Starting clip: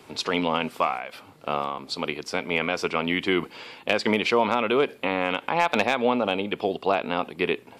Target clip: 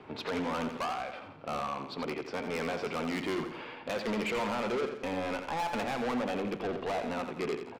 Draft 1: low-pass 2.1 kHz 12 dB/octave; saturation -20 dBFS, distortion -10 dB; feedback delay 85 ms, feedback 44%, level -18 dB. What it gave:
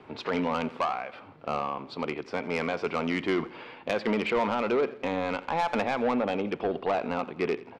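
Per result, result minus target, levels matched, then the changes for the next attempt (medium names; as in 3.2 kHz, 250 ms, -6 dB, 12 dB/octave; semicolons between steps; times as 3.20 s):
echo-to-direct -10 dB; saturation: distortion -7 dB
change: feedback delay 85 ms, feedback 44%, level -8 dB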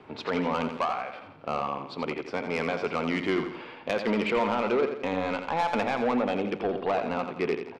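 saturation: distortion -7 dB
change: saturation -30 dBFS, distortion -4 dB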